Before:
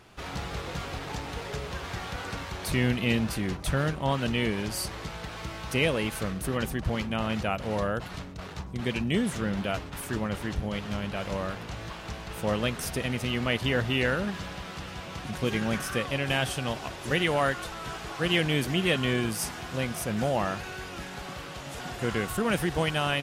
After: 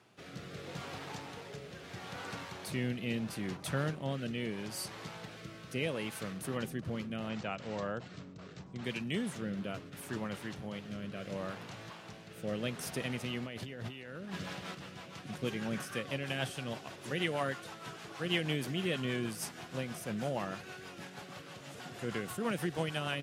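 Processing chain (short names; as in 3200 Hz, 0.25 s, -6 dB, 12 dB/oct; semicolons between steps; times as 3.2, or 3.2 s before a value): HPF 110 Hz 24 dB/oct; rotary speaker horn 0.75 Hz, later 6.3 Hz, at 13.7; 7.29–8.84 Chebyshev low-pass 7900 Hz, order 5; 13.46–14.75 negative-ratio compressor -37 dBFS, ratio -1; gain -6 dB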